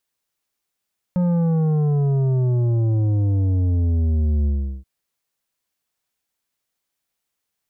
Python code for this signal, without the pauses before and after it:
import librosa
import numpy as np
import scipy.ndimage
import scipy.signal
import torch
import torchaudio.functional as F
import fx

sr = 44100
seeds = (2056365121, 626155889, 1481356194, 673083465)

y = fx.sub_drop(sr, level_db=-17.0, start_hz=180.0, length_s=3.68, drive_db=9.0, fade_s=0.38, end_hz=65.0)